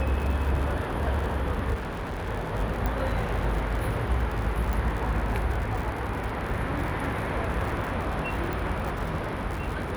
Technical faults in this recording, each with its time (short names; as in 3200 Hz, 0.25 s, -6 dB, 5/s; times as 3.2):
crackle 86/s -32 dBFS
1.74–2.29 clipped -29 dBFS
2.86 pop -15 dBFS
4.73 pop
8.53 pop